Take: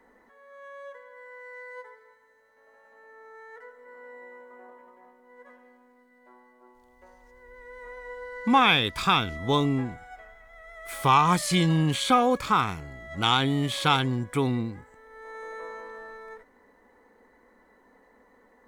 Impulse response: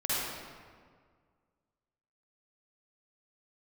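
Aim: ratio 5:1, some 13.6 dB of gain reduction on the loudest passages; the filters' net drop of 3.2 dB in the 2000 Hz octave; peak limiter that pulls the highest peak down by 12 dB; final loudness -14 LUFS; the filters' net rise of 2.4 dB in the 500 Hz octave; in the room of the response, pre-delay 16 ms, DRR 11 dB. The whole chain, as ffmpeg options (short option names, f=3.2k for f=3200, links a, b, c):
-filter_complex "[0:a]equalizer=f=500:t=o:g=3,equalizer=f=2k:t=o:g=-4.5,acompressor=threshold=-31dB:ratio=5,alimiter=level_in=5.5dB:limit=-24dB:level=0:latency=1,volume=-5.5dB,asplit=2[a][b];[1:a]atrim=start_sample=2205,adelay=16[c];[b][c]afir=irnorm=-1:irlink=0,volume=-20dB[d];[a][d]amix=inputs=2:normalize=0,volume=26dB"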